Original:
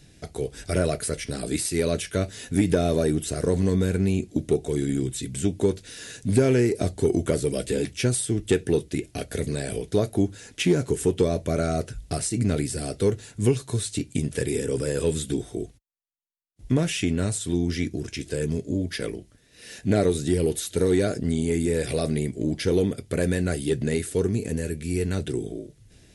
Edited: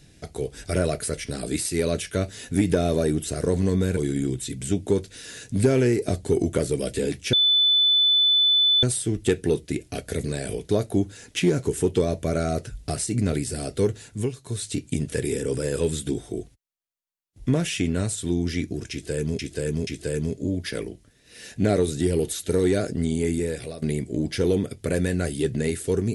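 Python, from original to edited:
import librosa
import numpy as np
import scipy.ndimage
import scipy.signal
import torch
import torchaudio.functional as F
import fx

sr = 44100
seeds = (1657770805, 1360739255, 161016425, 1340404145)

y = fx.edit(x, sr, fx.cut(start_s=3.97, length_s=0.73),
    fx.insert_tone(at_s=8.06, length_s=1.5, hz=3500.0, db=-15.5),
    fx.fade_down_up(start_s=13.28, length_s=0.63, db=-8.5, fade_s=0.26),
    fx.repeat(start_s=18.14, length_s=0.48, count=3),
    fx.fade_out_to(start_s=21.57, length_s=0.52, floor_db=-17.0), tone=tone)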